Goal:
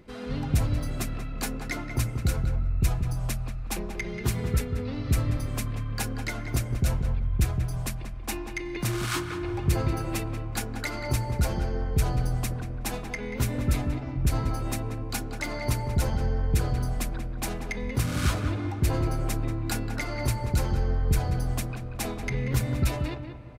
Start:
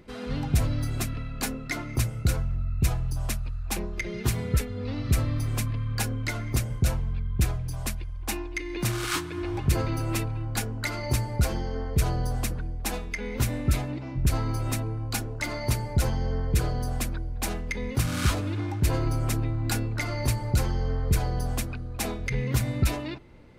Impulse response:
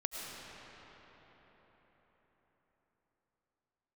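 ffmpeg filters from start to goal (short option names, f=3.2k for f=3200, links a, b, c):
-filter_complex "[0:a]asplit=2[a][b];[b]adelay=185,lowpass=f=1.9k:p=1,volume=-6dB,asplit=2[c][d];[d]adelay=185,lowpass=f=1.9k:p=1,volume=0.24,asplit=2[e][f];[f]adelay=185,lowpass=f=1.9k:p=1,volume=0.24[g];[a][c][e][g]amix=inputs=4:normalize=0,asplit=2[h][i];[1:a]atrim=start_sample=2205,lowpass=2.3k[j];[i][j]afir=irnorm=-1:irlink=0,volume=-16dB[k];[h][k]amix=inputs=2:normalize=0,volume=-2dB"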